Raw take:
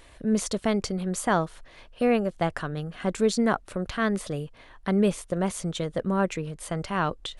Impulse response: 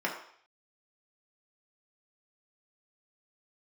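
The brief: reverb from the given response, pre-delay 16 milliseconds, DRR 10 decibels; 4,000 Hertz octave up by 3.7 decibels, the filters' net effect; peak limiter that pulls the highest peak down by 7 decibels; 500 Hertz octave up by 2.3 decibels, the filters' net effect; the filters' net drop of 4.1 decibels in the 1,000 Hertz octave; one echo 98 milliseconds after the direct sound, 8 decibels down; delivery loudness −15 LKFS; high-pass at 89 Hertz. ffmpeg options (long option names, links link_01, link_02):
-filter_complex "[0:a]highpass=89,equalizer=frequency=500:width_type=o:gain=4.5,equalizer=frequency=1000:width_type=o:gain=-8,equalizer=frequency=4000:width_type=o:gain=5,alimiter=limit=-17.5dB:level=0:latency=1,aecho=1:1:98:0.398,asplit=2[link_01][link_02];[1:a]atrim=start_sample=2205,adelay=16[link_03];[link_02][link_03]afir=irnorm=-1:irlink=0,volume=-18.5dB[link_04];[link_01][link_04]amix=inputs=2:normalize=0,volume=13dB"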